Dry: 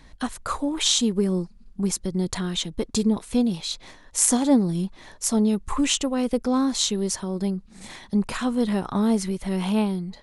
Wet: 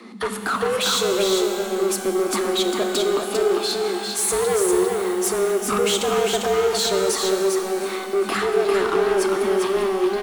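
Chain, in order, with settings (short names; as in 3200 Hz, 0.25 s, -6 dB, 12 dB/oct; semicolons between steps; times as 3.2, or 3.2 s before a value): fifteen-band EQ 160 Hz +5 dB, 1000 Hz +6 dB, 6300 Hz -5 dB; in parallel at -1.5 dB: negative-ratio compressor -25 dBFS; on the sum: frequency shift +190 Hz; soft clip -18.5 dBFS, distortion -11 dB; echo 0.399 s -4.5 dB; shimmer reverb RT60 2.6 s, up +12 st, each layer -8 dB, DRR 6 dB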